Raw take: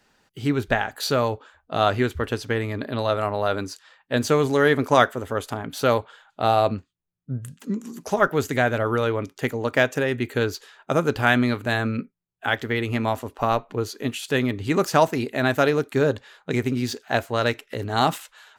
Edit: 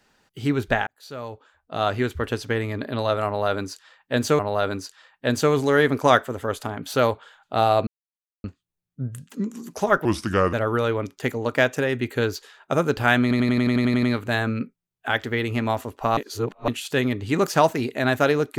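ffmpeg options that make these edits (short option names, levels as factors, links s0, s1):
-filter_complex "[0:a]asplit=17[s0][s1][s2][s3][s4][s5][s6][s7][s8][s9][s10][s11][s12][s13][s14][s15][s16];[s0]atrim=end=0.87,asetpts=PTS-STARTPTS,afade=t=out:st=0.866:d=0.004:c=hsin[s17];[s1]atrim=start=0.87:end=4.392,asetpts=PTS-STARTPTS,afade=t=in:d=1.4[s18];[s2]atrim=start=3.258:end=6.74,asetpts=PTS-STARTPTS,afade=t=out:st=3.478:d=0.004:c=hsin,apad=pad_dur=0.57[s19];[s3]atrim=start=6.74:end=8.354,asetpts=PTS-STARTPTS,afade=t=in:d=0.004:c=hsin[s20];[s4]atrim=start=8.35:end=8.72,asetpts=PTS-STARTPTS,asetrate=33957,aresample=44100[s21];[s5]atrim=start=8.716:end=11.502[s22];[s6]atrim=start=11.408:end=11.502[s23];[s7]atrim=start=11.408:end=11.502[s24];[s8]atrim=start=11.408:end=11.502[s25];[s9]atrim=start=11.408:end=11.502[s26];[s10]atrim=start=11.408:end=11.502[s27];[s11]atrim=start=11.408:end=11.502[s28];[s12]atrim=start=11.408:end=11.502[s29];[s13]atrim=start=11.408:end=11.502[s30];[s14]atrim=start=11.408:end=13.552[s31];[s15]atrim=start=13.548:end=14.062,asetpts=PTS-STARTPTS,areverse[s32];[s16]atrim=start=14.058[s33];[s17][s18]concat=n=2:v=0:a=1[s34];[s19][s20]concat=n=2:v=0:a=1[s35];[s34][s35]acrossfade=d=0.004:c1=hsin:c2=hsin[s36];[s36][s21]acrossfade=d=0.004:c1=hsin:c2=hsin[s37];[s37][s22]acrossfade=d=0.004:c1=hsin:c2=hsin[s38];[s38][s23]acrossfade=d=0.004:c1=hsin:c2=hsin[s39];[s39][s24]acrossfade=d=0.004:c1=hsin:c2=hsin[s40];[s40][s25]acrossfade=d=0.004:c1=hsin:c2=hsin[s41];[s41][s26]acrossfade=d=0.004:c1=hsin:c2=hsin[s42];[s42][s27]acrossfade=d=0.004:c1=hsin:c2=hsin[s43];[s43][s28]acrossfade=d=0.004:c1=hsin:c2=hsin[s44];[s44][s29]acrossfade=d=0.004:c1=hsin:c2=hsin[s45];[s45][s30]acrossfade=d=0.004:c1=hsin:c2=hsin[s46];[s46][s31]acrossfade=d=0.004:c1=hsin:c2=hsin[s47];[s47][s32]acrossfade=d=0.004:c1=hsin:c2=hsin[s48];[s48][s33]acrossfade=d=0.004:c1=hsin:c2=hsin"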